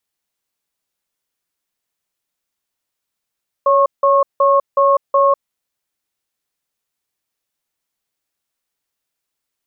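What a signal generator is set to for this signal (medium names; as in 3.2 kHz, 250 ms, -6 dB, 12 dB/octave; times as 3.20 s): cadence 558 Hz, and 1.09 kHz, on 0.20 s, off 0.17 s, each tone -12 dBFS 1.77 s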